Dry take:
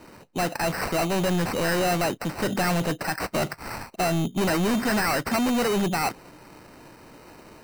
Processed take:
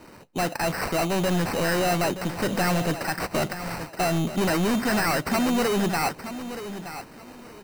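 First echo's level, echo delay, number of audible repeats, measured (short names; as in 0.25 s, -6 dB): -11.5 dB, 0.924 s, 2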